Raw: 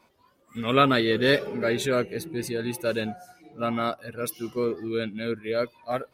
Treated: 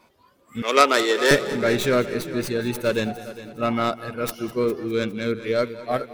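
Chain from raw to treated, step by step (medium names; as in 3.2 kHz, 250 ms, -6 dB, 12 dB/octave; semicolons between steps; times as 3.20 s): tracing distortion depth 0.13 ms; 0.62–1.31 s: high-pass 360 Hz 24 dB/octave; multi-head delay 204 ms, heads first and second, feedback 43%, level -17 dB; trim +4 dB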